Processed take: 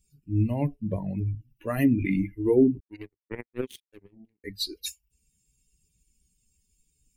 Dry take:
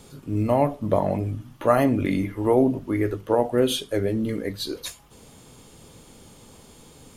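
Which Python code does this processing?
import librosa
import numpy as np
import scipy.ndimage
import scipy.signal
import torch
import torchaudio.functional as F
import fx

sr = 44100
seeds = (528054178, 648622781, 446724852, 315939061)

y = fx.bin_expand(x, sr, power=2.0)
y = fx.power_curve(y, sr, exponent=3.0, at=(2.8, 4.44))
y = fx.band_shelf(y, sr, hz=910.0, db=-15.5, octaves=1.7)
y = F.gain(torch.from_numpy(y), 3.5).numpy()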